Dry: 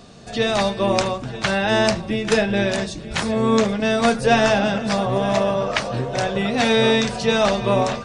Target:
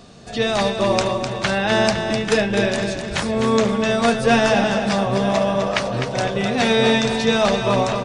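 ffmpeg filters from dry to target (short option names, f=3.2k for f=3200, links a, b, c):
-af "aecho=1:1:254|508|762|1016:0.447|0.17|0.0645|0.0245"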